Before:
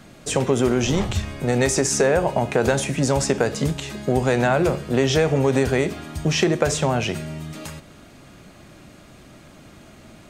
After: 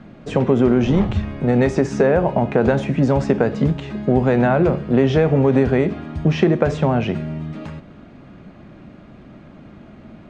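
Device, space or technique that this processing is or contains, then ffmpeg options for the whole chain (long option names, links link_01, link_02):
phone in a pocket: -af "lowpass=3300,equalizer=frequency=210:width_type=o:width=0.84:gain=5.5,highshelf=frequency=2100:gain=-8.5,volume=2.5dB"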